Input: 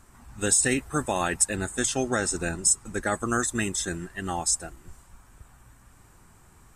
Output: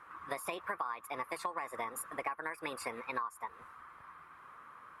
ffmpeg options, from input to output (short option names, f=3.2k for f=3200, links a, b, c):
-af "bandpass=f=840:t=q:w=4.9:csg=0,acompressor=threshold=-49dB:ratio=16,asetrate=59535,aresample=44100,volume=15dB"